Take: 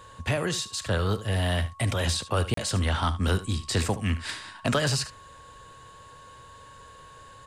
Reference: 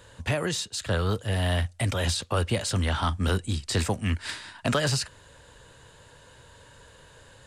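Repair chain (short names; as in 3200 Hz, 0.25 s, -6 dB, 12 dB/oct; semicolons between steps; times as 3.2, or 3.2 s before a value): notch 1100 Hz, Q 30; interpolate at 2.54, 33 ms; inverse comb 73 ms -14.5 dB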